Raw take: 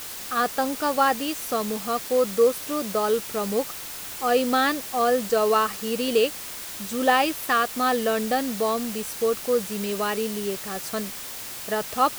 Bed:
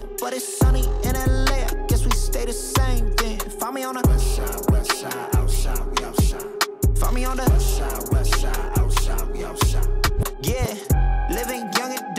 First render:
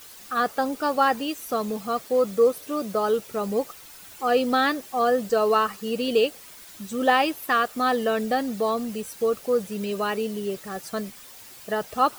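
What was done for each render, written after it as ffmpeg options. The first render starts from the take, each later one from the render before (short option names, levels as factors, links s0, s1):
-af "afftdn=nr=11:nf=-36"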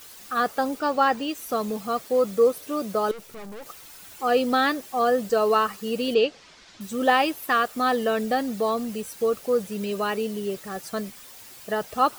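-filter_complex "[0:a]asettb=1/sr,asplit=3[s0][s1][s2];[s0]atrim=end=0.794[s3];[s1]atrim=start=0.79:end=1.35,asetpts=PTS-STARTPTS,afade=t=in:d=0.004:c=qsin,afade=t=out:st=0.556:d=0.004:c=qsin,equalizer=f=13000:t=o:w=0.85:g=-10.5[s4];[s2]atrim=start=1.346[s5];[s3][s4]acrossfade=d=0.004:c1=hsin:c2=qsin[s6];[s6][s5]acrossfade=d=0.004:c1=qsin:c2=hsin,asettb=1/sr,asplit=3[s7][s8][s9];[s7]atrim=end=3.114[s10];[s8]atrim=start=3.11:end=3.66,asetpts=PTS-STARTPTS,afade=t=in:d=0.004:c=qsin,afade=t=out:st=0.546:d=0.004:c=qsin,aeval=exprs='(tanh(79.4*val(0)+0.7)-tanh(0.7))/79.4':c=same[s11];[s9]atrim=start=3.656[s12];[s10][s11]acrossfade=d=0.004:c1=hsin:c2=qsin[s13];[s13][s12]acrossfade=d=0.004:c1=qsin:c2=hsin,asettb=1/sr,asplit=3[s14][s15][s16];[s14]atrim=end=6.144[s17];[s15]atrim=start=6.14:end=6.81,asetpts=PTS-STARTPTS,afade=t=in:d=0.004:c=qsin,afade=t=out:st=0.666:d=0.004:c=qsin,lowpass=f=5800:w=0.5412,lowpass=f=5800:w=1.3066[s18];[s16]atrim=start=6.806[s19];[s17][s18]acrossfade=d=0.004:c1=hsin:c2=qsin[s20];[s20][s19]acrossfade=d=0.004:c1=qsin:c2=hsin"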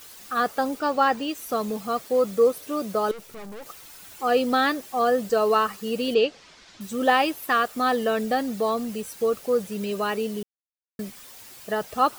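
-filter_complex "[0:a]asplit=3[s0][s1][s2];[s0]atrim=end=10.43,asetpts=PTS-STARTPTS,afade=t=out:st=10.426:d=0.004:c=hsin[s3];[s1]atrim=start=10.43:end=10.99,asetpts=PTS-STARTPTS,volume=0[s4];[s2]atrim=start=10.99,asetpts=PTS-STARTPTS,afade=t=in:d=0.004:c=hsin[s5];[s3][s4][s5]concat=n=3:v=0:a=1"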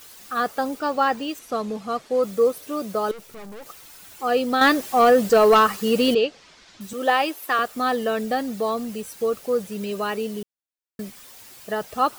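-filter_complex "[0:a]asettb=1/sr,asplit=3[s0][s1][s2];[s0]atrim=end=1.394[s3];[s1]atrim=start=1.39:end=2.23,asetpts=PTS-STARTPTS,afade=t=in:d=0.004:c=qsin,afade=t=out:st=0.836:d=0.004:c=qsin,adynamicsmooth=sensitivity=7:basefreq=6500[s4];[s2]atrim=start=2.226[s5];[s3][s4]acrossfade=d=0.004:c1=hsin:c2=qsin[s6];[s6][s5]acrossfade=d=0.004:c1=qsin:c2=hsin,asettb=1/sr,asplit=3[s7][s8][s9];[s7]atrim=end=4.614[s10];[s8]atrim=start=4.61:end=6.15,asetpts=PTS-STARTPTS,afade=t=in:d=0.004:c=qsin,afade=t=out:st=1.536:d=0.004:c=qsin,aeval=exprs='0.355*sin(PI/2*1.58*val(0)/0.355)':c=same[s11];[s9]atrim=start=6.146[s12];[s10][s11]acrossfade=d=0.004:c1=hsin:c2=qsin[s13];[s13][s12]acrossfade=d=0.004:c1=qsin:c2=hsin,asettb=1/sr,asplit=3[s14][s15][s16];[s14]atrim=end=6.934[s17];[s15]atrim=start=6.93:end=7.59,asetpts=PTS-STARTPTS,afade=t=in:d=0.004:c=qsin,afade=t=out:st=0.656:d=0.004:c=qsin,highpass=f=290:w=0.5412,highpass=f=290:w=1.3066[s18];[s16]atrim=start=7.586[s19];[s17][s18]acrossfade=d=0.004:c1=hsin:c2=qsin[s20];[s20][s19]acrossfade=d=0.004:c1=qsin:c2=hsin"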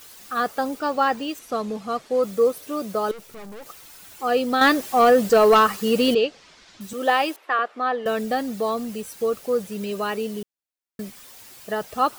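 -filter_complex "[0:a]asettb=1/sr,asplit=3[s0][s1][s2];[s0]atrim=end=7.364[s3];[s1]atrim=start=7.36:end=8.06,asetpts=PTS-STARTPTS,afade=t=in:d=0.004:c=qsin,afade=t=out:st=0.696:d=0.004:c=qsin,highpass=380,lowpass=2400[s4];[s2]atrim=start=8.056[s5];[s3][s4]acrossfade=d=0.004:c1=hsin:c2=qsin[s6];[s6][s5]acrossfade=d=0.004:c1=qsin:c2=hsin"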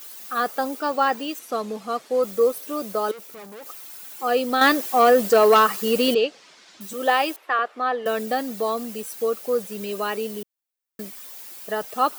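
-af "highpass=230,highshelf=f=12000:g=9"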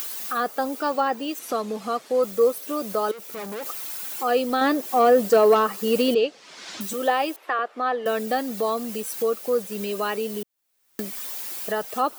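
-filter_complex "[0:a]acrossover=split=850[s0][s1];[s1]alimiter=limit=0.119:level=0:latency=1:release=482[s2];[s0][s2]amix=inputs=2:normalize=0,acompressor=mode=upward:threshold=0.0631:ratio=2.5"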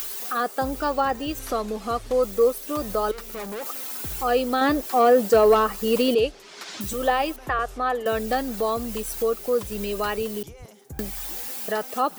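-filter_complex "[1:a]volume=0.0891[s0];[0:a][s0]amix=inputs=2:normalize=0"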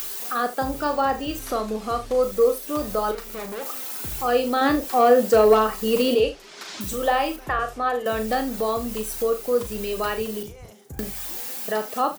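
-af "aecho=1:1:37|75:0.398|0.168"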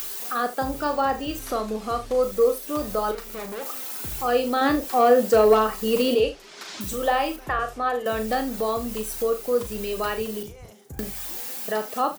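-af "volume=0.891"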